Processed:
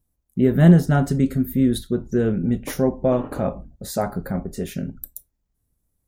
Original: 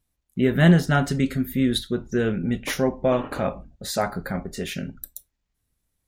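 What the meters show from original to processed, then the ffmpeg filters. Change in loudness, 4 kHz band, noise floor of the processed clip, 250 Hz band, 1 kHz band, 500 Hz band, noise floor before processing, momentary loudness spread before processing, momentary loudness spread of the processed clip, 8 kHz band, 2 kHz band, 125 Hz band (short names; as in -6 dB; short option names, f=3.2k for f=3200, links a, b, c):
+2.5 dB, -7.5 dB, -74 dBFS, +3.5 dB, -1.0 dB, +2.0 dB, -78 dBFS, 15 LU, 16 LU, -1.5 dB, -6.0 dB, +3.5 dB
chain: -af "equalizer=f=2.8k:w=0.45:g=-13,volume=4dB"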